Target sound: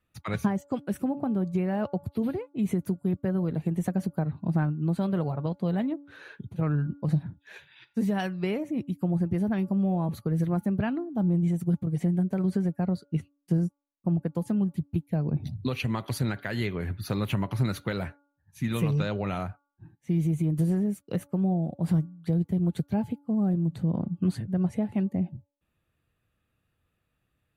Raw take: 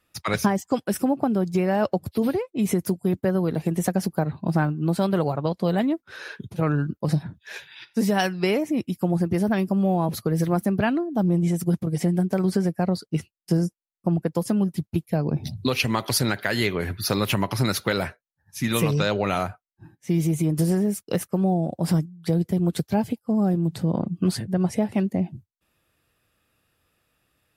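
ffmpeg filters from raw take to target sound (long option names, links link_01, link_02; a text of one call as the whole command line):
ffmpeg -i in.wav -af "bass=frequency=250:gain=8,treble=frequency=4000:gain=-6,bandreject=frequency=5200:width=5.2,bandreject=frequency=285.7:width_type=h:width=4,bandreject=frequency=571.4:width_type=h:width=4,bandreject=frequency=857.1:width_type=h:width=4,bandreject=frequency=1142.8:width_type=h:width=4,bandreject=frequency=1428.5:width_type=h:width=4,volume=-9dB" out.wav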